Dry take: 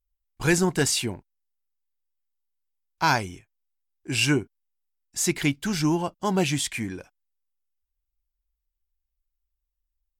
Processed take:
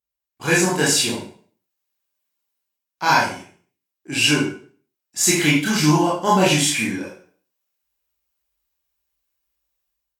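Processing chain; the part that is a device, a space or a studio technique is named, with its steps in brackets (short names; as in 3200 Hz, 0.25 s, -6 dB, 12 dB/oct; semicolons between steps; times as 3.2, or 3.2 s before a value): far laptop microphone (reverb RT60 0.45 s, pre-delay 21 ms, DRR -6.5 dB; HPF 170 Hz 12 dB/oct; AGC gain up to 10 dB); gain -3 dB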